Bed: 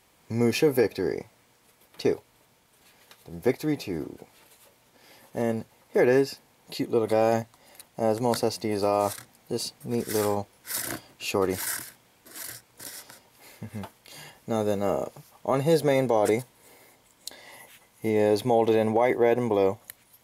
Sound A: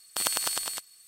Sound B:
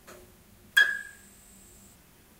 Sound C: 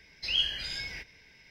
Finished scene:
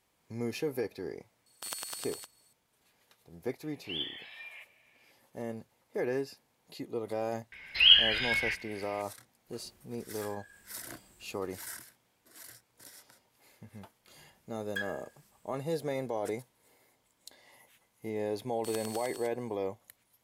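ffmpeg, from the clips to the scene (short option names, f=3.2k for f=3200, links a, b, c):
-filter_complex "[1:a]asplit=2[a][b];[3:a]asplit=2[c][d];[2:a]asplit=2[e][f];[0:a]volume=-12dB[g];[c]highpass=f=390:t=q:w=0.5412,highpass=f=390:t=q:w=1.307,lowpass=f=3.1k:t=q:w=0.5176,lowpass=f=3.1k:t=q:w=0.7071,lowpass=f=3.1k:t=q:w=1.932,afreqshift=190[h];[d]firequalizer=gain_entry='entry(450,0);entry(1200,12);entry(3000,11);entry(4900,-5);entry(7700,-14)':delay=0.05:min_phase=1[i];[e]acompressor=threshold=-43dB:ratio=6:attack=3.2:release=140:knee=1:detection=peak[j];[a]atrim=end=1.07,asetpts=PTS-STARTPTS,volume=-11.5dB,afade=t=in:d=0.004:c=hsin,afade=t=out:st=1.066:d=0.004:c=hsin,adelay=1460[k];[h]atrim=end=1.5,asetpts=PTS-STARTPTS,volume=-6.5dB,afade=t=in:d=0.004:c=hsin,afade=t=out:st=1.496:d=0.004:c=hsin,adelay=159201S[l];[i]atrim=end=1.5,asetpts=PTS-STARTPTS,volume=-1.5dB,afade=t=in:d=0.004:c=hsin,afade=t=out:st=1.496:d=0.004:c=hsin,adelay=7520[m];[j]atrim=end=2.39,asetpts=PTS-STARTPTS,volume=-9dB,afade=t=in:d=0.05,afade=t=out:st=2.34:d=0.05,adelay=9450[n];[f]atrim=end=2.39,asetpts=PTS-STARTPTS,volume=-16.5dB,afade=t=in:d=0.1,afade=t=out:st=2.29:d=0.1,adelay=13990[o];[b]atrim=end=1.07,asetpts=PTS-STARTPTS,volume=-15.5dB,afade=t=in:d=0.004:c=hsin,afade=t=out:st=1.066:d=0.004:c=hsin,adelay=18480[p];[g][k][l][m][n][o][p]amix=inputs=7:normalize=0"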